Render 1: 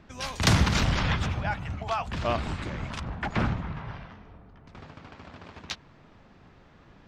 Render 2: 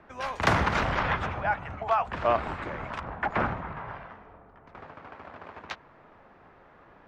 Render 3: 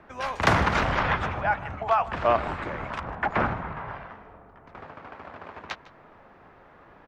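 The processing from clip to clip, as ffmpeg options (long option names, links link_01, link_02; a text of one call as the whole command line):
ffmpeg -i in.wav -filter_complex "[0:a]acrossover=split=390 2100:gain=0.224 1 0.126[link_01][link_02][link_03];[link_01][link_02][link_03]amix=inputs=3:normalize=0,volume=5.5dB" out.wav
ffmpeg -i in.wav -af "aecho=1:1:154:0.106,volume=2.5dB" out.wav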